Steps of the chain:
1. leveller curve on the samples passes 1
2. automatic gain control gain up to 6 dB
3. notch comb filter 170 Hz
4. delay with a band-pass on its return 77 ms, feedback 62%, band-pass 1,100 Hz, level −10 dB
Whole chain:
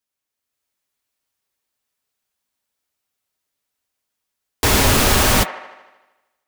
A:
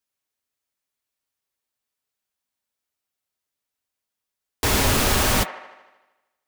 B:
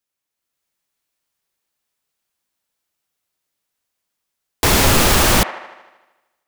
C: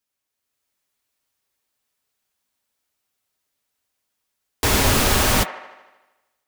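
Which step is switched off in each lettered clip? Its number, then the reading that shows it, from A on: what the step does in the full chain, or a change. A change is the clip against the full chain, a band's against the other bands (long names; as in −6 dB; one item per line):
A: 2, change in integrated loudness −5.0 LU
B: 3, change in integrated loudness +1.0 LU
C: 1, change in integrated loudness −3.0 LU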